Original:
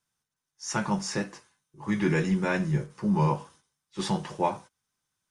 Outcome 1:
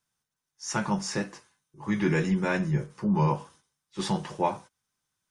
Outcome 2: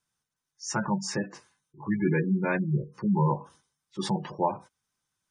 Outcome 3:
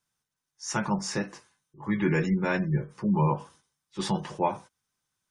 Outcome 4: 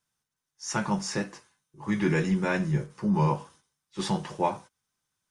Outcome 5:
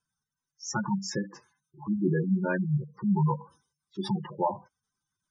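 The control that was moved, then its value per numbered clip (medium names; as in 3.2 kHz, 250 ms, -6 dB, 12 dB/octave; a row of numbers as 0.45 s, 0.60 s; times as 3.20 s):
spectral gate, under each frame's peak: -50 dB, -20 dB, -35 dB, -60 dB, -10 dB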